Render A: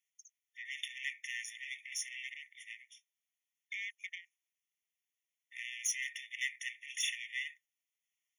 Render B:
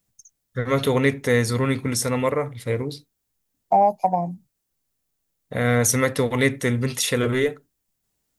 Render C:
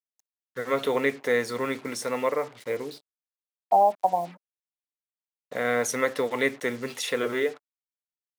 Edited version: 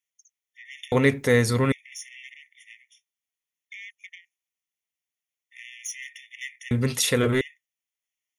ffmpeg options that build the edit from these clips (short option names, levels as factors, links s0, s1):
-filter_complex "[1:a]asplit=2[s0][s1];[0:a]asplit=3[s2][s3][s4];[s2]atrim=end=0.922[s5];[s0]atrim=start=0.918:end=1.722[s6];[s3]atrim=start=1.718:end=6.712[s7];[s1]atrim=start=6.708:end=7.412[s8];[s4]atrim=start=7.408[s9];[s5][s6]acrossfade=d=0.004:c1=hsin:c2=hsin[s10];[s10][s7]acrossfade=d=0.004:c1=hsin:c2=hsin[s11];[s11][s8]acrossfade=d=0.004:c1=hsin:c2=hsin[s12];[s12][s9]acrossfade=d=0.004:c1=hsin:c2=hsin"